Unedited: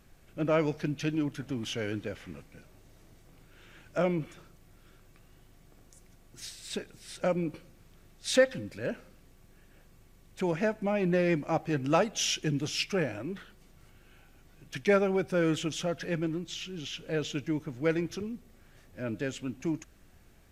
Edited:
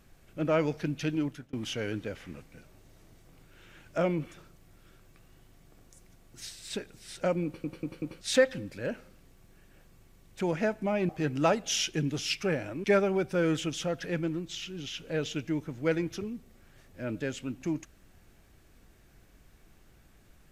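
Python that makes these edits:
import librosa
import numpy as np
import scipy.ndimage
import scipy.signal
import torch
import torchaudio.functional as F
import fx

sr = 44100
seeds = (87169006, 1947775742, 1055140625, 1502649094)

y = fx.edit(x, sr, fx.fade_out_span(start_s=1.25, length_s=0.28),
    fx.stutter_over(start_s=7.45, slice_s=0.19, count=4),
    fx.cut(start_s=11.09, length_s=0.49),
    fx.cut(start_s=13.33, length_s=1.5), tone=tone)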